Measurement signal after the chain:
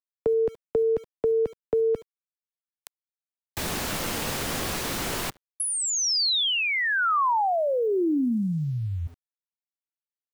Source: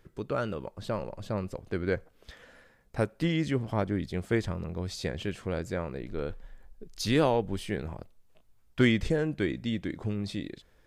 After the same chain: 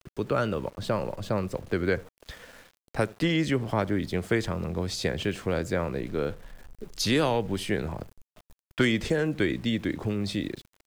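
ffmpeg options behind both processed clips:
ffmpeg -i in.wav -filter_complex "[0:a]asplit=2[link_01][link_02];[link_02]adelay=70,lowpass=frequency=940:poles=1,volume=-21dB,asplit=2[link_03][link_04];[link_04]adelay=70,lowpass=frequency=940:poles=1,volume=0.24[link_05];[link_01][link_03][link_05]amix=inputs=3:normalize=0,acrossover=split=96|260|1200|4400[link_06][link_07][link_08][link_09][link_10];[link_06]acompressor=threshold=-47dB:ratio=4[link_11];[link_07]acompressor=threshold=-38dB:ratio=4[link_12];[link_08]acompressor=threshold=-31dB:ratio=4[link_13];[link_09]acompressor=threshold=-34dB:ratio=4[link_14];[link_10]acompressor=threshold=-35dB:ratio=4[link_15];[link_11][link_12][link_13][link_14][link_15]amix=inputs=5:normalize=0,aeval=exprs='val(0)*gte(abs(val(0)),0.00188)':channel_layout=same,volume=6.5dB" out.wav

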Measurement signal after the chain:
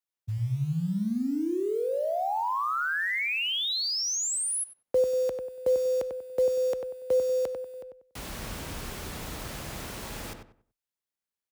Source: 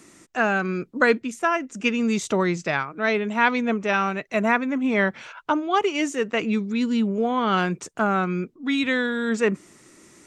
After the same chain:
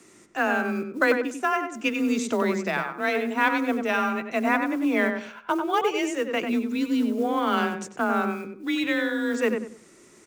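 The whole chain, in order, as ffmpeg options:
ffmpeg -i in.wav -filter_complex "[0:a]afreqshift=26,acrusher=bits=7:mode=log:mix=0:aa=0.000001,asplit=2[link_01][link_02];[link_02]adelay=95,lowpass=frequency=2000:poles=1,volume=-5dB,asplit=2[link_03][link_04];[link_04]adelay=95,lowpass=frequency=2000:poles=1,volume=0.29,asplit=2[link_05][link_06];[link_06]adelay=95,lowpass=frequency=2000:poles=1,volume=0.29,asplit=2[link_07][link_08];[link_08]adelay=95,lowpass=frequency=2000:poles=1,volume=0.29[link_09];[link_01][link_03][link_05][link_07][link_09]amix=inputs=5:normalize=0,volume=-3dB" out.wav

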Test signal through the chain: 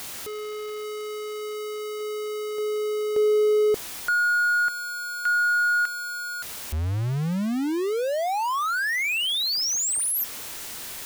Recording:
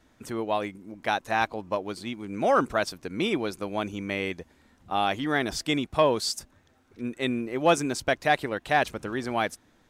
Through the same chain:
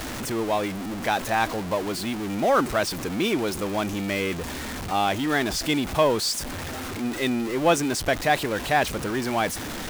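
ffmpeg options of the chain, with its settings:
ffmpeg -i in.wav -af "aeval=exprs='val(0)+0.5*0.0447*sgn(val(0))':channel_layout=same" out.wav

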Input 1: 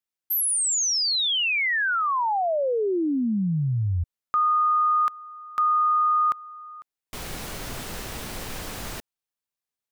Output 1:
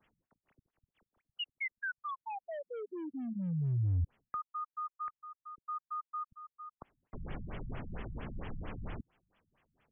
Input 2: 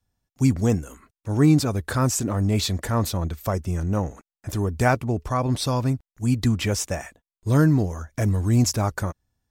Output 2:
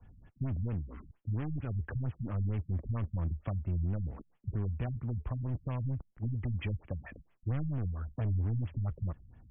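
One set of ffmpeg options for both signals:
ffmpeg -i in.wav -filter_complex "[0:a]asoftclip=type=hard:threshold=-23.5dB,areverse,acompressor=mode=upward:threshold=-34dB:ratio=2.5:attack=20:release=55:knee=2.83:detection=peak,areverse,bass=frequency=250:gain=5,treble=frequency=4000:gain=-5,acrossover=split=140|1700[link_01][link_02][link_03];[link_02]acompressor=threshold=-31dB:ratio=5:attack=34:release=823:knee=2.83:detection=peak[link_04];[link_01][link_04][link_03]amix=inputs=3:normalize=0,afftfilt=real='re*lt(b*sr/1024,200*pow(3500/200,0.5+0.5*sin(2*PI*4.4*pts/sr)))':imag='im*lt(b*sr/1024,200*pow(3500/200,0.5+0.5*sin(2*PI*4.4*pts/sr)))':win_size=1024:overlap=0.75,volume=-8.5dB" out.wav

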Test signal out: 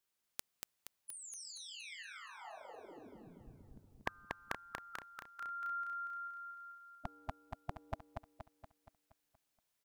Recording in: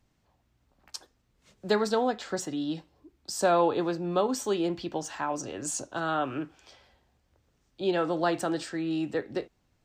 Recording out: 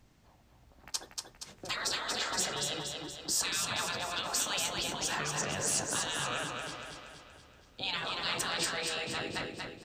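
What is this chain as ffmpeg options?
ffmpeg -i in.wav -af "afftfilt=real='re*lt(hypot(re,im),0.0501)':imag='im*lt(hypot(re,im),0.0501)':win_size=1024:overlap=0.75,aecho=1:1:236|472|708|944|1180|1416|1652:0.631|0.328|0.171|0.0887|0.0461|0.024|0.0125,volume=7dB" out.wav

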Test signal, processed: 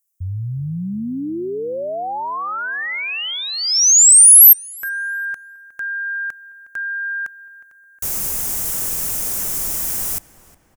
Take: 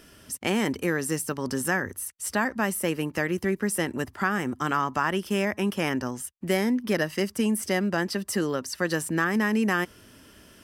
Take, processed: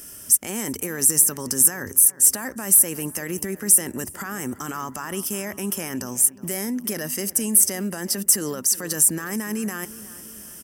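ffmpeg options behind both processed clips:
ffmpeg -i in.wav -filter_complex "[0:a]alimiter=limit=-22.5dB:level=0:latency=1:release=18,aexciter=amount=6.9:drive=5.7:freq=5800,asplit=2[link_01][link_02];[link_02]adelay=362,lowpass=frequency=2800:poles=1,volume=-17dB,asplit=2[link_03][link_04];[link_04]adelay=362,lowpass=frequency=2800:poles=1,volume=0.52,asplit=2[link_05][link_06];[link_06]adelay=362,lowpass=frequency=2800:poles=1,volume=0.52,asplit=2[link_07][link_08];[link_08]adelay=362,lowpass=frequency=2800:poles=1,volume=0.52,asplit=2[link_09][link_10];[link_10]adelay=362,lowpass=frequency=2800:poles=1,volume=0.52[link_11];[link_01][link_03][link_05][link_07][link_09][link_11]amix=inputs=6:normalize=0,volume=1.5dB" out.wav

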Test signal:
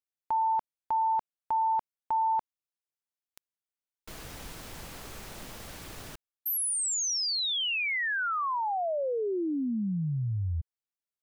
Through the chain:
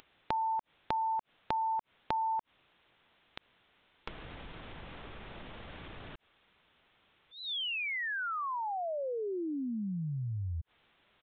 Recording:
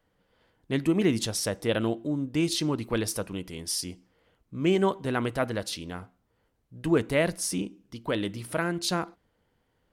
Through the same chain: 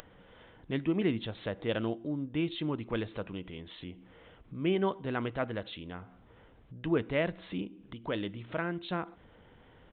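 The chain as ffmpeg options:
ffmpeg -i in.wav -af "aresample=8000,aresample=44100,acompressor=mode=upward:threshold=-43dB:ratio=2.5:attack=74:release=38:knee=2.83:detection=peak,volume=-5.5dB" out.wav

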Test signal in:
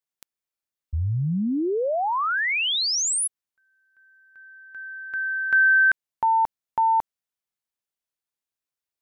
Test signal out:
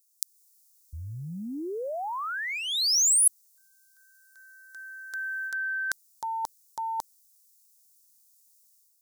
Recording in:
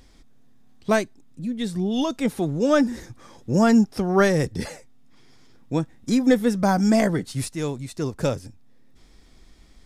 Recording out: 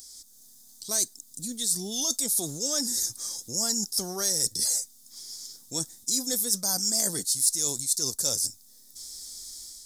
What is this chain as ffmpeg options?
ffmpeg -i in.wav -af "dynaudnorm=framelen=110:gausssize=5:maxgain=6dB,aexciter=amount=14.4:drive=8.1:freq=4100,areverse,acompressor=threshold=-21dB:ratio=4:attack=61:release=68:knee=1:detection=rms,areverse,bass=frequency=250:gain=-5,treble=frequency=4000:gain=5,volume=-12dB" out.wav

